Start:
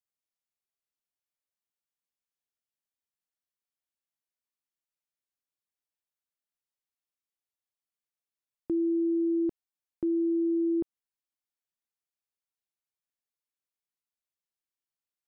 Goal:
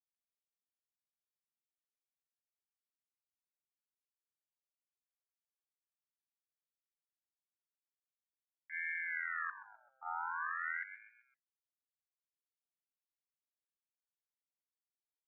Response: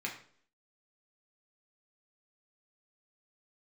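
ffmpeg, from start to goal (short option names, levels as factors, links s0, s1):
-filter_complex "[0:a]agate=range=0.0112:threshold=0.0708:ratio=16:detection=peak,asplit=2[s0][s1];[s1]asplit=4[s2][s3][s4][s5];[s2]adelay=129,afreqshift=47,volume=0.299[s6];[s3]adelay=258,afreqshift=94,volume=0.126[s7];[s4]adelay=387,afreqshift=141,volume=0.0525[s8];[s5]adelay=516,afreqshift=188,volume=0.0221[s9];[s6][s7][s8][s9]amix=inputs=4:normalize=0[s10];[s0][s10]amix=inputs=2:normalize=0,asplit=3[s11][s12][s13];[s12]asetrate=22050,aresample=44100,atempo=2,volume=0.794[s14];[s13]asetrate=33038,aresample=44100,atempo=1.33484,volume=0.891[s15];[s11][s14][s15]amix=inputs=3:normalize=0,asubboost=boost=2.5:cutoff=230,aeval=exprs='val(0)*sin(2*PI*1500*n/s+1500*0.3/0.45*sin(2*PI*0.45*n/s))':c=same,volume=4.22"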